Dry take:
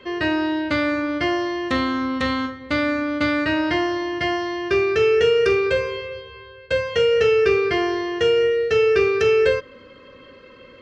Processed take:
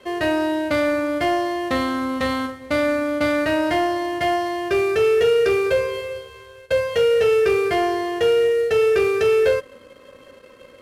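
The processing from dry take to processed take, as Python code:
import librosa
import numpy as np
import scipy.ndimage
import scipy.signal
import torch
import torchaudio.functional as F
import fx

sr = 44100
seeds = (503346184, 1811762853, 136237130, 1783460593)

y = fx.cvsd(x, sr, bps=64000)
y = fx.peak_eq(y, sr, hz=660.0, db=9.0, octaves=0.67)
y = fx.leveller(y, sr, passes=1)
y = y * 10.0 ** (-5.0 / 20.0)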